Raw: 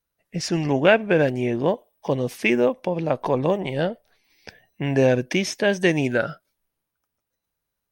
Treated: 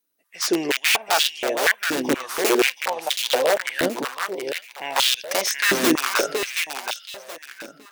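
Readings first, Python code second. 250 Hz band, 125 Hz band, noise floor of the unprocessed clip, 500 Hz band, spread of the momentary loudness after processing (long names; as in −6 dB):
−3.0 dB, −17.5 dB, −82 dBFS, −3.0 dB, 12 LU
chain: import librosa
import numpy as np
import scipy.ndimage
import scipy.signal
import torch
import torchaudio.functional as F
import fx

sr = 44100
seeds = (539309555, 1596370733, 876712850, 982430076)

y = fx.high_shelf(x, sr, hz=3400.0, db=11.0)
y = (np.mod(10.0 ** (13.0 / 20.0) * y + 1.0, 2.0) - 1.0) / 10.0 ** (13.0 / 20.0)
y = fx.echo_feedback(y, sr, ms=725, feedback_pct=28, wet_db=-5.5)
y = fx.filter_held_highpass(y, sr, hz=4.2, low_hz=280.0, high_hz=3300.0)
y = y * 10.0 ** (-2.5 / 20.0)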